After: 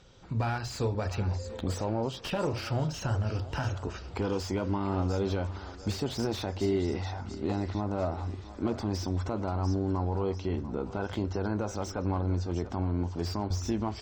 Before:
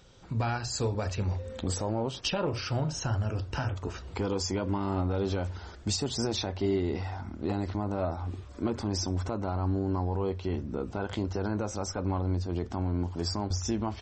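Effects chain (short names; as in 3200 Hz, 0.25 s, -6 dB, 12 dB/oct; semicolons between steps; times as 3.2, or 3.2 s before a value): Bessel low-pass 7300 Hz; thinning echo 0.692 s, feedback 47%, high-pass 400 Hz, level -13.5 dB; slew limiter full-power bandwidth 55 Hz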